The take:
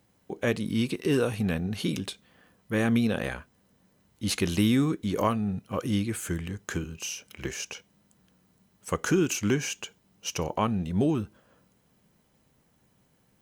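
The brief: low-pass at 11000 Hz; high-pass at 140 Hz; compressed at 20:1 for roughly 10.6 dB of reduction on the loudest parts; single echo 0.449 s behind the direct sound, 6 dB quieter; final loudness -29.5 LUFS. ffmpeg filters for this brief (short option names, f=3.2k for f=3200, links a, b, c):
-af "highpass=140,lowpass=11k,acompressor=threshold=-30dB:ratio=20,aecho=1:1:449:0.501,volume=6.5dB"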